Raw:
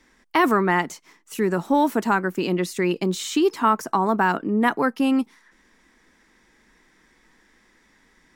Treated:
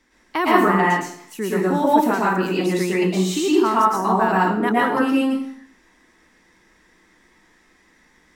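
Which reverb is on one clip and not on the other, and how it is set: plate-style reverb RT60 0.6 s, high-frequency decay 0.85×, pre-delay 0.1 s, DRR -6 dB; gain -4 dB

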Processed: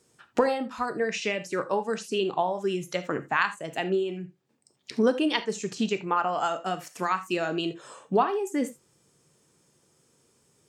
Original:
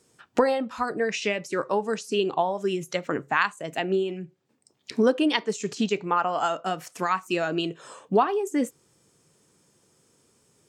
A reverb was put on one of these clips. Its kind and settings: non-linear reverb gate 0.1 s flat, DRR 10.5 dB; gain -2 dB

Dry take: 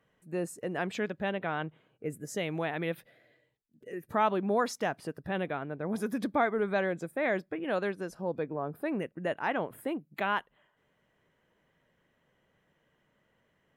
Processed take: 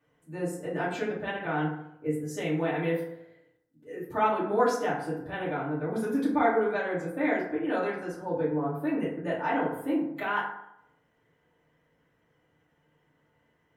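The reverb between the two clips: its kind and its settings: FDN reverb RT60 0.77 s, low-frequency decay 0.95×, high-frequency decay 0.45×, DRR -9 dB; gain -7.5 dB

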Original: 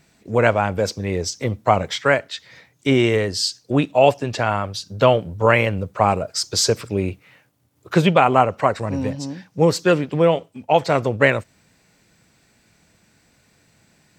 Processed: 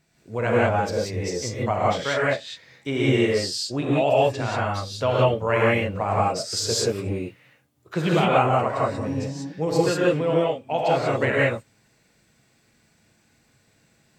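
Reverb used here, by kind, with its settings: non-linear reverb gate 0.21 s rising, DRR -6 dB; gain -10.5 dB

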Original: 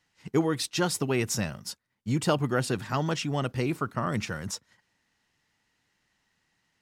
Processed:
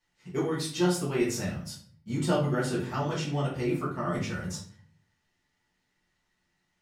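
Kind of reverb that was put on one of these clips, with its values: shoebox room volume 52 m³, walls mixed, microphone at 1.6 m; gain -11 dB

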